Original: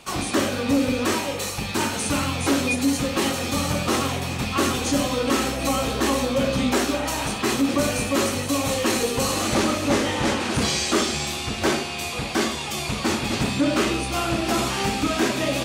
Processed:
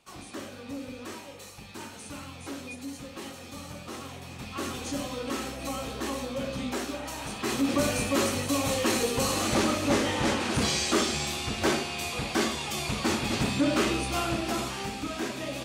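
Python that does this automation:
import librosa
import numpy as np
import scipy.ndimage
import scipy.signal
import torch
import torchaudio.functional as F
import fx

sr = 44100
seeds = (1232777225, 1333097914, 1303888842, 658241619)

y = fx.gain(x, sr, db=fx.line((3.94, -17.5), (4.8, -11.0), (7.21, -11.0), (7.72, -4.0), (14.17, -4.0), (14.89, -11.0)))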